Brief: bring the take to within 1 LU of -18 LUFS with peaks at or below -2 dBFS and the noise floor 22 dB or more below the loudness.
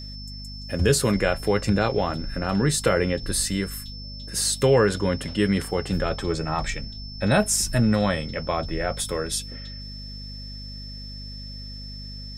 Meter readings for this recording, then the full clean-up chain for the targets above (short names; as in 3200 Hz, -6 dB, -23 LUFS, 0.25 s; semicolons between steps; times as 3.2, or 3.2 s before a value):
hum 50 Hz; harmonics up to 250 Hz; hum level -36 dBFS; steady tone 5300 Hz; tone level -39 dBFS; loudness -24.0 LUFS; peak -6.0 dBFS; loudness target -18.0 LUFS
-> de-hum 50 Hz, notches 5; notch 5300 Hz, Q 30; gain +6 dB; limiter -2 dBFS